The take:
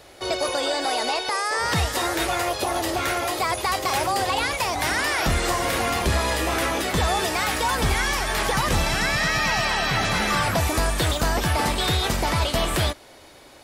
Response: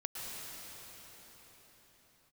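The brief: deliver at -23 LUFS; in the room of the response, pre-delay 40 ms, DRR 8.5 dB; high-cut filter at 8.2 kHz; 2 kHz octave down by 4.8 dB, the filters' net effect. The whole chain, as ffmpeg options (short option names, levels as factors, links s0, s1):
-filter_complex "[0:a]lowpass=8200,equalizer=f=2000:t=o:g=-6,asplit=2[s0][s1];[1:a]atrim=start_sample=2205,adelay=40[s2];[s1][s2]afir=irnorm=-1:irlink=0,volume=0.299[s3];[s0][s3]amix=inputs=2:normalize=0,volume=1.12"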